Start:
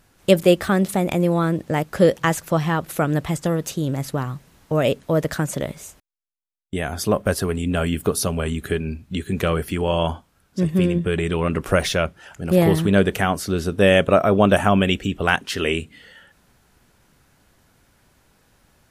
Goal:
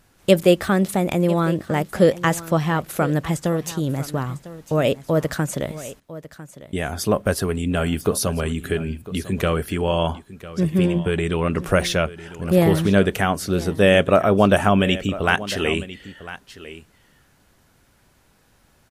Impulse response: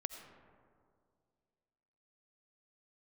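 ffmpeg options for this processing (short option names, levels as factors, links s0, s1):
-af "aecho=1:1:1001:0.158"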